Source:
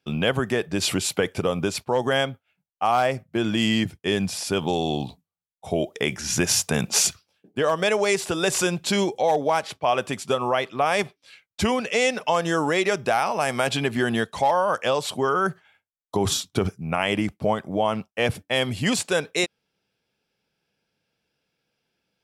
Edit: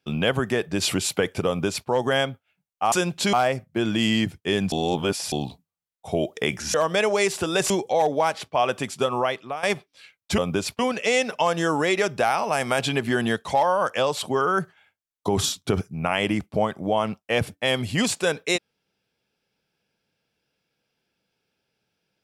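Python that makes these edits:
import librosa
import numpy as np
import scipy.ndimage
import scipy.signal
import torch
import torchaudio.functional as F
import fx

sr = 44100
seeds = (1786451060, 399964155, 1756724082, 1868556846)

y = fx.edit(x, sr, fx.duplicate(start_s=1.47, length_s=0.41, to_s=11.67),
    fx.reverse_span(start_s=4.31, length_s=0.6),
    fx.cut(start_s=6.33, length_s=1.29),
    fx.move(start_s=8.58, length_s=0.41, to_s=2.92),
    fx.fade_out_to(start_s=10.49, length_s=0.43, floor_db=-15.0), tone=tone)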